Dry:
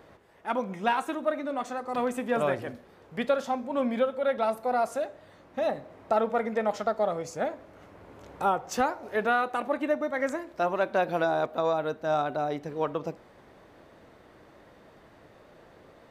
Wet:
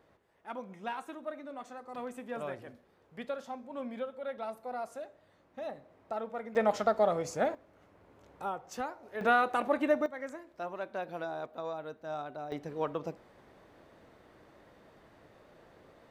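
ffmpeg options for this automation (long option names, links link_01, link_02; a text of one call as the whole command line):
ffmpeg -i in.wav -af "asetnsamples=nb_out_samples=441:pad=0,asendcmd='6.55 volume volume 0dB;7.55 volume volume -11dB;9.21 volume volume -0.5dB;10.06 volume volume -12dB;12.52 volume volume -4.5dB',volume=-12dB" out.wav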